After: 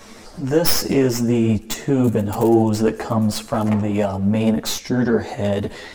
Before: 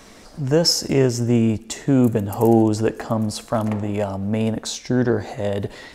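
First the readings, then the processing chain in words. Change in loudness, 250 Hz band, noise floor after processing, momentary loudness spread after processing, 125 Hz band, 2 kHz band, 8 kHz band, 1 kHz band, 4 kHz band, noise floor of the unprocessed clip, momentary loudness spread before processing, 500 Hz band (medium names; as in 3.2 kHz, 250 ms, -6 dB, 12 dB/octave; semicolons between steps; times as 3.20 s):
+1.0 dB, +1.5 dB, -40 dBFS, 6 LU, 0.0 dB, +2.5 dB, +0.5 dB, +1.5 dB, -2.0 dB, -45 dBFS, 9 LU, +1.0 dB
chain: tracing distortion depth 0.13 ms; in parallel at +1 dB: peak limiter -13.5 dBFS, peak gain reduction 9 dB; on the sum: three-phase chorus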